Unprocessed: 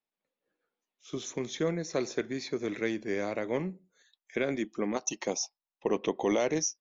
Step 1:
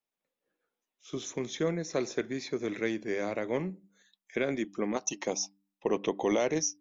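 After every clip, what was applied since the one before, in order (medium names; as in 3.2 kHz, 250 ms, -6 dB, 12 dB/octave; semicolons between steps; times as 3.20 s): band-stop 4.4 kHz, Q 17; de-hum 98.48 Hz, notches 3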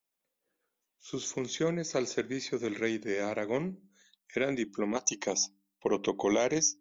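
treble shelf 6 kHz +8 dB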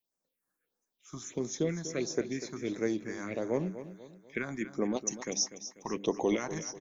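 phase shifter stages 4, 1.5 Hz, lowest notch 440–3200 Hz; on a send: feedback delay 245 ms, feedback 41%, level -12.5 dB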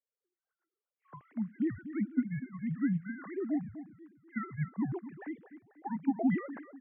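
formants replaced by sine waves; mistuned SSB -160 Hz 310–2200 Hz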